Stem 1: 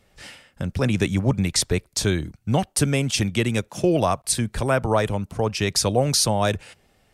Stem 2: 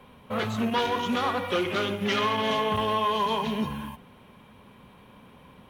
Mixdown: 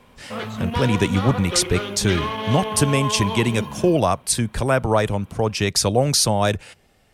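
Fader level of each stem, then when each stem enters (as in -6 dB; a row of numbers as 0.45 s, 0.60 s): +2.0 dB, -1.0 dB; 0.00 s, 0.00 s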